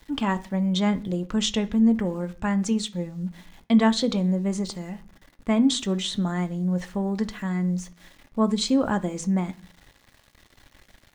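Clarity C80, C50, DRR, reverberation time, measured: 23.5 dB, 18.5 dB, 9.0 dB, 0.40 s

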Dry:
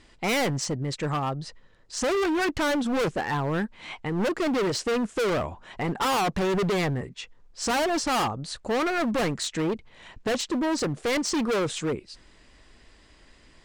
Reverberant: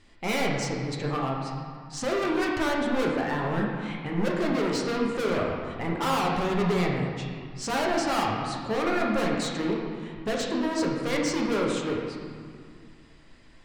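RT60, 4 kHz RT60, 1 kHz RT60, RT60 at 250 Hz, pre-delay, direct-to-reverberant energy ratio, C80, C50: 2.0 s, 1.4 s, 2.1 s, 2.7 s, 5 ms, -2.5 dB, 2.5 dB, 0.5 dB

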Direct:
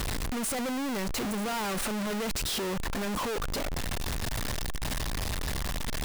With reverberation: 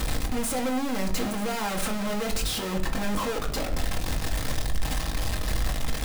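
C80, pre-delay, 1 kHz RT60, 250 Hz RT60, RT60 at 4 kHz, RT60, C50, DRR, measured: 14.5 dB, 4 ms, 0.45 s, 0.70 s, 0.35 s, 0.55 s, 11.0 dB, 1.5 dB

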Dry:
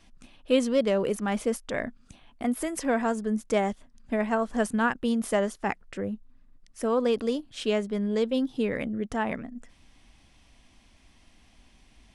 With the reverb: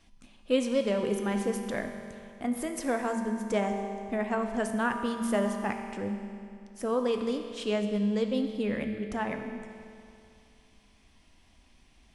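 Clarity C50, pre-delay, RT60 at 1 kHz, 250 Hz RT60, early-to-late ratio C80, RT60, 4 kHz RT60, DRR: 6.0 dB, 5 ms, 2.5 s, 2.5 s, 7.0 dB, 2.5 s, 2.3 s, 4.5 dB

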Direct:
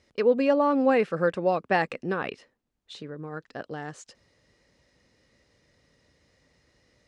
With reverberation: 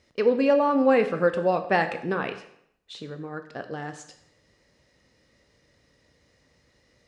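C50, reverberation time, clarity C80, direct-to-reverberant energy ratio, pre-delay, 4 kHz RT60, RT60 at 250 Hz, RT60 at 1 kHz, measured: 11.0 dB, 0.70 s, 13.5 dB, 7.5 dB, 7 ms, 0.65 s, 0.65 s, 0.70 s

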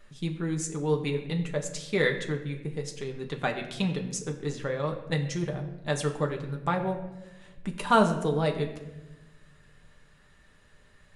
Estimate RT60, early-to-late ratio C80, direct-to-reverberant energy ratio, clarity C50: 1.1 s, 11.5 dB, 2.0 dB, 9.5 dB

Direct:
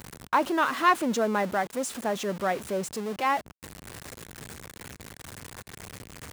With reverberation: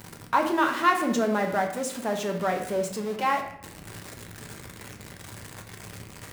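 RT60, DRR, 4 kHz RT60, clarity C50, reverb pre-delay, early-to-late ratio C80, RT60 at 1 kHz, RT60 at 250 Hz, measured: 0.70 s, 2.5 dB, 0.50 s, 7.5 dB, 5 ms, 10.5 dB, 0.70 s, 1.0 s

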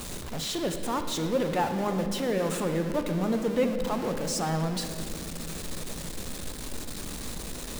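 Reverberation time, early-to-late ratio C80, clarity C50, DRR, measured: 2.7 s, 8.5 dB, 7.5 dB, 6.0 dB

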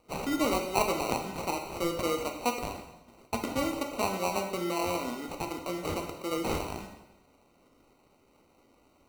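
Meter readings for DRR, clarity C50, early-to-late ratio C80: 3.0 dB, 6.5 dB, 8.5 dB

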